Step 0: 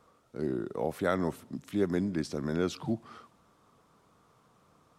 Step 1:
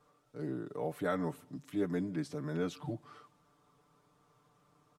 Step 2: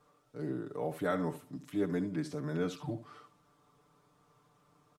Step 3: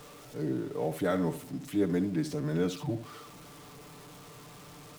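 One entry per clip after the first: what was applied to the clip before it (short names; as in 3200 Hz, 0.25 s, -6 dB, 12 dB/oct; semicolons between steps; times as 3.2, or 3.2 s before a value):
comb 6.8 ms, depth 95%; dynamic EQ 5200 Hz, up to -5 dB, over -57 dBFS, Q 1.4; gain -7.5 dB
echo 71 ms -13 dB; gain +1 dB
zero-crossing step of -48 dBFS; bell 1200 Hz -5 dB 1.4 oct; gain +4.5 dB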